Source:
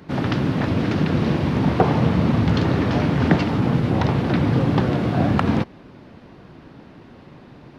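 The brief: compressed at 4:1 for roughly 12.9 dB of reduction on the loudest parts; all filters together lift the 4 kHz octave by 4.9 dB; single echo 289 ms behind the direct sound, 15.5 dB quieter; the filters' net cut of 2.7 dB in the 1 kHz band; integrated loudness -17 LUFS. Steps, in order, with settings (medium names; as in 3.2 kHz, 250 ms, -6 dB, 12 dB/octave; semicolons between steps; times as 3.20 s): peaking EQ 1 kHz -4 dB; peaking EQ 4 kHz +6.5 dB; compression 4:1, threshold -29 dBFS; delay 289 ms -15.5 dB; trim +14 dB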